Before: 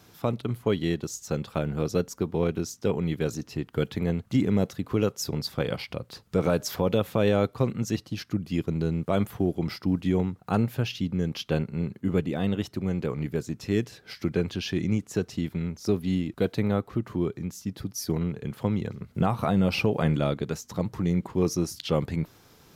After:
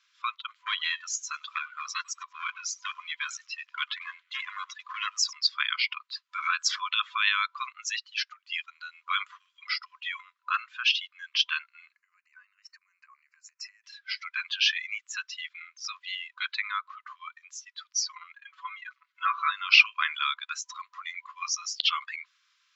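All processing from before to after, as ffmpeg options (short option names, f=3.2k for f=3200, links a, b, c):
-filter_complex "[0:a]asettb=1/sr,asplit=3[a][b][c];[a]atrim=end=0.474[d];[b]atrim=start=0.47:end=5.33,asetpts=PTS-STARTPTS,afade=t=in:d=0.004:c=qsin,afade=t=out:st=4.856:d=0.004:c=qsin,asoftclip=type=hard:threshold=-20dB,asplit=5[e][f][g][h][i];[f]adelay=98,afreqshift=-100,volume=-14.5dB[j];[g]adelay=196,afreqshift=-200,volume=-21.6dB[k];[h]adelay=294,afreqshift=-300,volume=-28.8dB[l];[i]adelay=392,afreqshift=-400,volume=-35.9dB[m];[e][j][k][l][m]amix=inputs=5:normalize=0,atrim=end_sample=214326[n];[c]atrim=start=5.326[o];[d][n]acrossfade=d=0.004:c1=hsin:c2=qsin[p];[p][o]acrossfade=d=0.004:c1=qsin:c2=hsin,asettb=1/sr,asplit=3[q][r][s];[q]atrim=end=11.954[t];[r]atrim=start=11.95:end=13.84,asetpts=PTS-STARTPTS,afade=t=in:d=0.004:c=qsin,afade=t=out:st=1.886:d=0.004:c=qsin,highshelf=f=8.5k:g=8,acompressor=threshold=-36dB:ratio=16:attack=3.2:release=140:knee=1:detection=peak,asuperstop=centerf=3400:order=4:qfactor=1.8[u];[s]atrim=start=13.836[v];[t][u]acrossfade=d=0.004:c1=hsin:c2=qsin[w];[w][v]acrossfade=d=0.004:c1=qsin:c2=hsin,asettb=1/sr,asplit=3[x][y][z];[x]atrim=end=18.364[aa];[y]atrim=start=18.36:end=19.52,asetpts=PTS-STARTPTS,afade=t=in:d=0.004:c=qsin,afade=t=out:st=1.156:d=0.004:c=qsin,highshelf=f=2k:g=-6.5,aecho=1:1:6.1:0.8,atrim=end_sample=51156[ab];[z]atrim=start=19.516[ac];[aa][ab]acrossfade=d=0.004:c1=hsin:c2=qsin[ad];[ad][ac]acrossfade=d=0.004:c1=qsin:c2=hsin,afftdn=nr=19:nf=-42,afftfilt=real='re*between(b*sr/4096,1000,7700)':imag='im*between(b*sr/4096,1000,7700)':win_size=4096:overlap=0.75,equalizer=f=2.7k:w=0.5:g=13.5"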